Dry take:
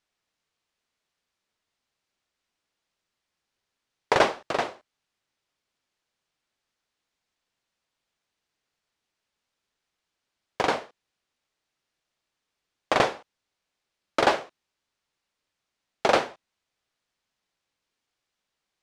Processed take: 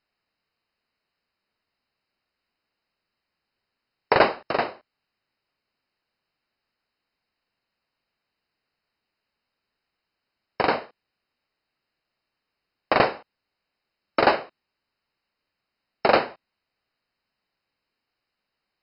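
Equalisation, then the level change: Butterworth band-stop 3400 Hz, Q 5.1; brick-wall FIR low-pass 5300 Hz; bell 220 Hz +2 dB 0.36 oct; +2.5 dB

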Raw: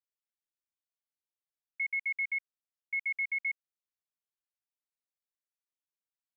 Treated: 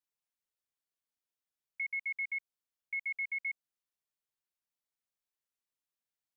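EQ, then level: dynamic EQ 1900 Hz, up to -4 dB, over -43 dBFS, Q 1.2; 0.0 dB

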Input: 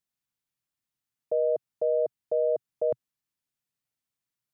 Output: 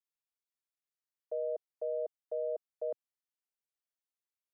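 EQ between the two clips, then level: ladder high-pass 330 Hz, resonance 20%; -6.0 dB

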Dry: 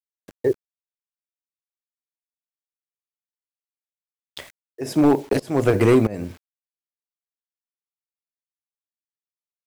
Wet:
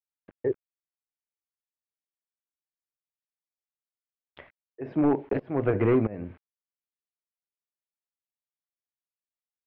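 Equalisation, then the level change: LPF 2500 Hz 24 dB/oct; air absorption 130 m; -6.5 dB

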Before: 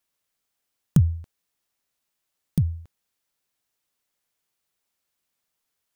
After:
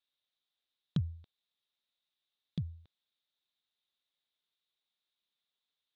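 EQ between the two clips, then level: ladder low-pass 3900 Hz, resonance 80%; low shelf 69 Hz -10 dB; 0.0 dB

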